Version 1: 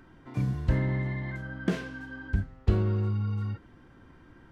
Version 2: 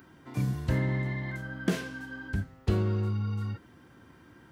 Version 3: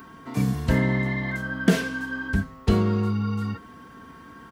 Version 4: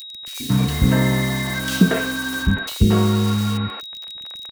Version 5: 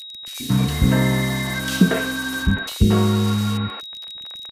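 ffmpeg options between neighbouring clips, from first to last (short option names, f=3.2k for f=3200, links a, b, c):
-af "highpass=86,aemphasis=mode=production:type=50kf"
-af "aecho=1:1:4.4:0.49,aeval=exprs='val(0)+0.00178*sin(2*PI*1100*n/s)':c=same,volume=7.5dB"
-filter_complex "[0:a]acrusher=bits=5:mix=0:aa=0.000001,aeval=exprs='val(0)+0.0126*sin(2*PI*3800*n/s)':c=same,acrossover=split=380|2500[a][b][c];[a]adelay=130[d];[b]adelay=230[e];[d][e][c]amix=inputs=3:normalize=0,volume=6dB"
-ar 32000 -c:a libmp3lame -b:a 160k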